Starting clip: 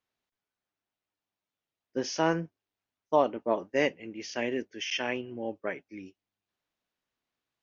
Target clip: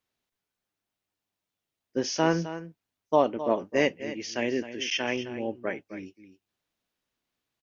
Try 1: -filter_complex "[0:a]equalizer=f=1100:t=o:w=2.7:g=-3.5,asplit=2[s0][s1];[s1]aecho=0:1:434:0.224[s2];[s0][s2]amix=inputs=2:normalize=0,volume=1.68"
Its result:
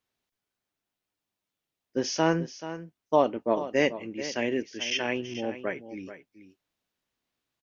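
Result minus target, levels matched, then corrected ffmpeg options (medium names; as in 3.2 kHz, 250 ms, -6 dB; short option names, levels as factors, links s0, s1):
echo 173 ms late
-filter_complex "[0:a]equalizer=f=1100:t=o:w=2.7:g=-3.5,asplit=2[s0][s1];[s1]aecho=0:1:261:0.224[s2];[s0][s2]amix=inputs=2:normalize=0,volume=1.68"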